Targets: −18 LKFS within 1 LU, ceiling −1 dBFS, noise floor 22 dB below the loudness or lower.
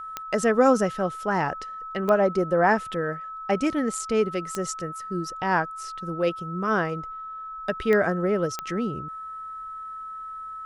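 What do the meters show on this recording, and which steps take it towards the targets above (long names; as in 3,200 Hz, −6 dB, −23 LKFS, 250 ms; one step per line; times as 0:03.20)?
number of clicks 5; interfering tone 1,300 Hz; level of the tone −34 dBFS; integrated loudness −25.5 LKFS; sample peak −7.5 dBFS; target loudness −18.0 LKFS
→ click removal
notch filter 1,300 Hz, Q 30
level +7.5 dB
brickwall limiter −1 dBFS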